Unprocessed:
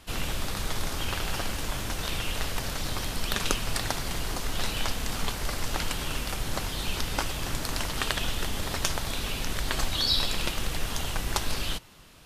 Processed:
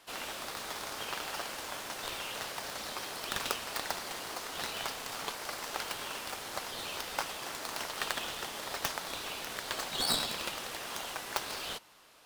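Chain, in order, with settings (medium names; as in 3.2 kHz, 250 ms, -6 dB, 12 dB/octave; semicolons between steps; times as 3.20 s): tracing distortion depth 0.19 ms; high-pass 520 Hz 12 dB/octave; in parallel at -7.5 dB: sample-and-hold 12×; on the sum: trim -5.5 dB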